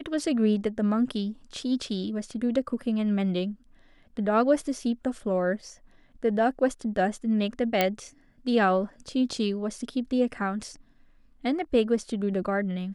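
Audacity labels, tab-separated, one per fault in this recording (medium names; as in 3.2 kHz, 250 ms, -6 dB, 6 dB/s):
7.810000	7.810000	pop -8 dBFS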